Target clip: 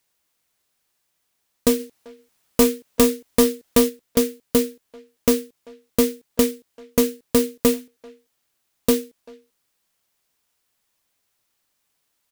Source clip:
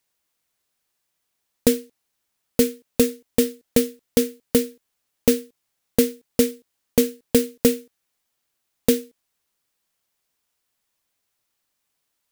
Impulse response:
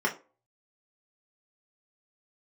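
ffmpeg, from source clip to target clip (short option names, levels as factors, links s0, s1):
-filter_complex "[0:a]asplit=3[s0][s1][s2];[s0]afade=t=out:st=1.79:d=0.02[s3];[s1]acontrast=34,afade=t=in:st=1.79:d=0.02,afade=t=out:st=3.88:d=0.02[s4];[s2]afade=t=in:st=3.88:d=0.02[s5];[s3][s4][s5]amix=inputs=3:normalize=0,asoftclip=type=tanh:threshold=0.237,asplit=2[s6][s7];[s7]adelay=390,highpass=300,lowpass=3400,asoftclip=type=hard:threshold=0.0891,volume=0.1[s8];[s6][s8]amix=inputs=2:normalize=0,volume=1.5"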